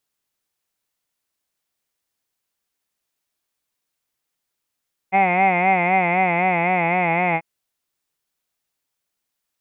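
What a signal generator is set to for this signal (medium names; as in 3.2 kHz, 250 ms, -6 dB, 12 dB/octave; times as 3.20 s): formant vowel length 2.29 s, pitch 187 Hz, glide -1.5 st, vibrato 3.9 Hz, F1 780 Hz, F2 2.1 kHz, F3 2.5 kHz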